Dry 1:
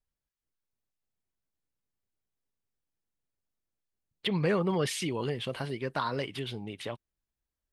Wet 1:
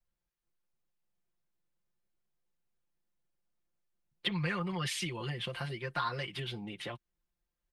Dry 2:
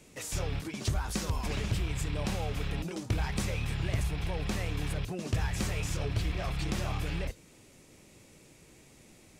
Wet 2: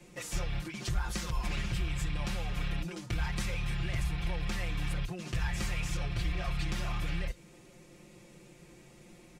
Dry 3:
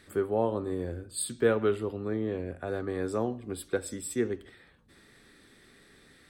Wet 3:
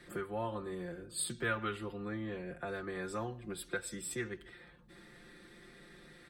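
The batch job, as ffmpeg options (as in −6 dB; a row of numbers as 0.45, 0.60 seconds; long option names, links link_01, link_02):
-filter_complex "[0:a]highshelf=frequency=3600:gain=-7.5,aecho=1:1:5.7:0.96,acrossover=split=120|1100[link_01][link_02][link_03];[link_02]acompressor=threshold=-42dB:ratio=5[link_04];[link_01][link_04][link_03]amix=inputs=3:normalize=0"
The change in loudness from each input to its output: −4.0, −2.0, −8.0 LU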